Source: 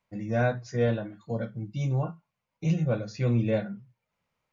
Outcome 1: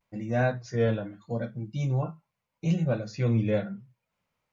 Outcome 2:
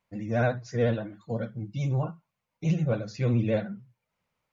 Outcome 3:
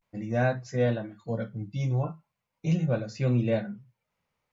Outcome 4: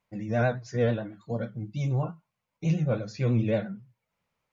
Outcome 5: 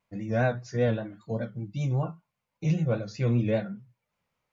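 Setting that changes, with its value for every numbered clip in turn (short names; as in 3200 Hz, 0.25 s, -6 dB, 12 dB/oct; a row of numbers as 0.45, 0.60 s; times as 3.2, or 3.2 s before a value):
vibrato, rate: 0.79, 14, 0.38, 9.1, 5.1 Hz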